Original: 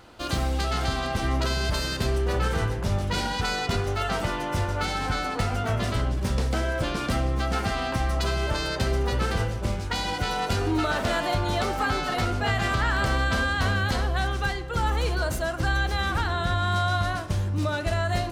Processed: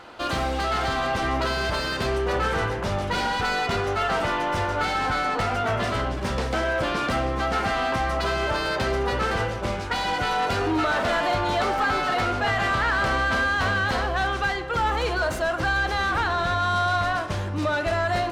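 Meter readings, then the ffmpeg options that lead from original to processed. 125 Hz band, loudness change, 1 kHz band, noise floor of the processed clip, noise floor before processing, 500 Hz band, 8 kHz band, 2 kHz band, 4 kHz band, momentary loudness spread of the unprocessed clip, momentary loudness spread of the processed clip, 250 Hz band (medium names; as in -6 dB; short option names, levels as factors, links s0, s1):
-4.0 dB, +2.0 dB, +5.0 dB, -29 dBFS, -31 dBFS, +3.5 dB, -2.0 dB, +4.5 dB, +1.0 dB, 3 LU, 4 LU, 0.0 dB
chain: -filter_complex "[0:a]asplit=2[s0][s1];[s1]highpass=f=720:p=1,volume=6.31,asoftclip=type=tanh:threshold=0.188[s2];[s0][s2]amix=inputs=2:normalize=0,lowpass=f=2000:p=1,volume=0.501"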